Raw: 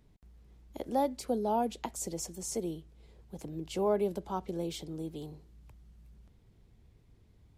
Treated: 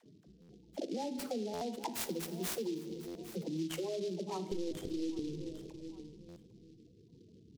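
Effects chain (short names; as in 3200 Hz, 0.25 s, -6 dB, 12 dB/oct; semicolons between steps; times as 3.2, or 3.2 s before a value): HPF 210 Hz 12 dB/oct; dispersion lows, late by 46 ms, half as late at 440 Hz; limiter -27.5 dBFS, peak gain reduction 9.5 dB; spectral gate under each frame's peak -10 dB strong; 4.51–5.29 LPC vocoder at 8 kHz pitch kept; rotary speaker horn 5.5 Hz, later 0.9 Hz, at 0.85; feedback echo 0.804 s, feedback 18%, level -21 dB; reverb RT60 1.2 s, pre-delay 6 ms, DRR 10 dB; compressor 5:1, threshold -47 dBFS, peak gain reduction 13 dB; dynamic EQ 610 Hz, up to -4 dB, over -59 dBFS, Q 1.1; stuck buffer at 0.41/1.53/3.07/6.28, samples 512, times 6; noise-modulated delay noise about 4100 Hz, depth 0.052 ms; gain +13 dB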